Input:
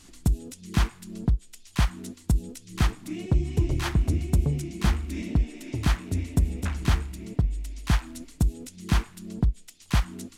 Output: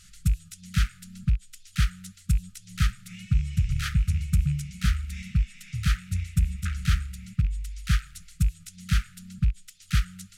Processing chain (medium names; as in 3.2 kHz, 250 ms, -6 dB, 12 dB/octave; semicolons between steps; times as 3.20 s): rattle on loud lows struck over -21 dBFS, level -34 dBFS; brick-wall FIR band-stop 200–1200 Hz